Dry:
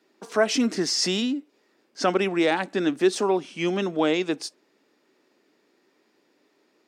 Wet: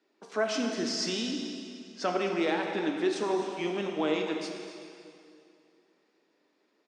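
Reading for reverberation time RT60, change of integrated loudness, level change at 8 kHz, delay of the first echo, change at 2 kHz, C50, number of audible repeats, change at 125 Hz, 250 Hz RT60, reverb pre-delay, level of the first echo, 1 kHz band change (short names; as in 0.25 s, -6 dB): 2.5 s, -6.5 dB, -8.5 dB, 0.258 s, -6.0 dB, 3.0 dB, 1, -8.0 dB, 2.6 s, 5 ms, -13.0 dB, -5.5 dB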